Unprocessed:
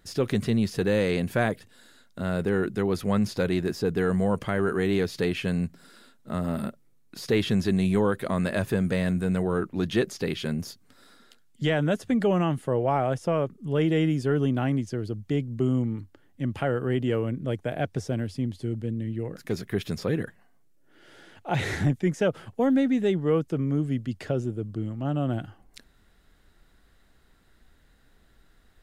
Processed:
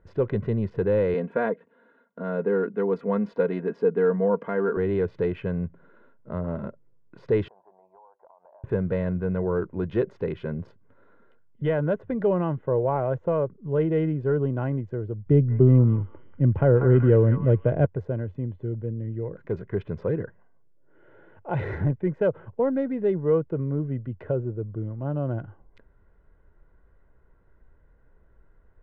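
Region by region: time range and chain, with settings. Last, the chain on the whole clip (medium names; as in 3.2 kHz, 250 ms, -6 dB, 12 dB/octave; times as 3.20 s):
1.14–4.77 s: high-pass 180 Hz 24 dB/octave + comb 4.3 ms, depth 59%
7.48–8.64 s: Butterworth band-pass 810 Hz, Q 3.6 + compression 16:1, threshold -48 dBFS
15.26–17.86 s: bass shelf 440 Hz +11.5 dB + repeats whose band climbs or falls 189 ms, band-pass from 1.3 kHz, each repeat 0.7 oct, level -0.5 dB
whole clip: local Wiener filter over 9 samples; low-pass 1.3 kHz 12 dB/octave; comb 2 ms, depth 48%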